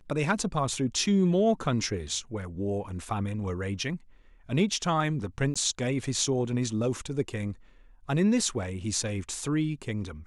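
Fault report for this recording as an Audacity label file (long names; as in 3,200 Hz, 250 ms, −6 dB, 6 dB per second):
5.540000	5.560000	drop-out 16 ms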